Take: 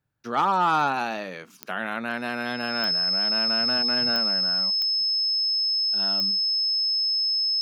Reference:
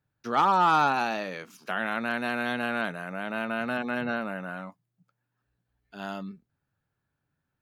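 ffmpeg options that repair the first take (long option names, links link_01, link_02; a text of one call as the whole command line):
ffmpeg -i in.wav -af "adeclick=threshold=4,bandreject=frequency=5200:width=30" out.wav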